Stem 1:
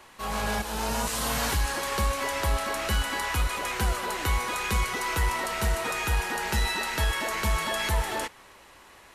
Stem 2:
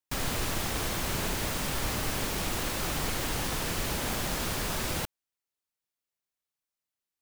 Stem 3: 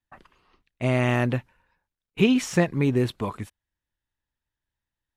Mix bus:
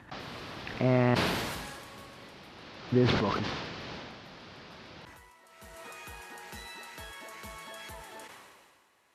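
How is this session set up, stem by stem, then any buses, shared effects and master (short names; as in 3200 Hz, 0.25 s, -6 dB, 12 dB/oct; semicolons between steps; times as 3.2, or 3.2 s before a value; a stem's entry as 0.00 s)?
-16.0 dB, 0.00 s, no send, auto duck -23 dB, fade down 1.20 s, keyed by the third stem
0.98 s -9.5 dB -> 1.34 s -16.5 dB -> 2.5 s -16.5 dB -> 3.09 s -7.5 dB -> 3.94 s -7.5 dB -> 4.17 s -15 dB, 0.00 s, no send, steep low-pass 5000 Hz 36 dB/oct
-2.0 dB, 0.00 s, muted 1.15–2.92, no send, upward compressor, threshold -36 dBFS; LPF 1600 Hz 12 dB/oct; backwards sustainer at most 79 dB/s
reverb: off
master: HPF 110 Hz 12 dB/oct; sustainer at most 32 dB/s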